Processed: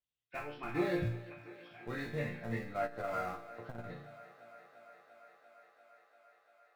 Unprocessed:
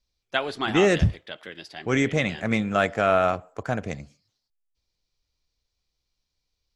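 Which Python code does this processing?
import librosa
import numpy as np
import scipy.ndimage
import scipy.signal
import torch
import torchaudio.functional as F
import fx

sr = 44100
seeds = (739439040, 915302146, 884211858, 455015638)

p1 = fx.freq_compress(x, sr, knee_hz=1400.0, ratio=1.5)
p2 = scipy.signal.sosfilt(scipy.signal.butter(2, 49.0, 'highpass', fs=sr, output='sos'), p1)
p3 = fx.schmitt(p2, sr, flips_db=-20.5)
p4 = p2 + (p3 * 10.0 ** (-7.0 / 20.0))
p5 = fx.resonator_bank(p4, sr, root=46, chord='major', decay_s=0.5)
p6 = fx.echo_thinned(p5, sr, ms=345, feedback_pct=85, hz=220.0, wet_db=-18.5)
p7 = fx.transformer_sat(p6, sr, knee_hz=270.0, at=(2.73, 3.84))
y = p7 * 10.0 ** (2.0 / 20.0)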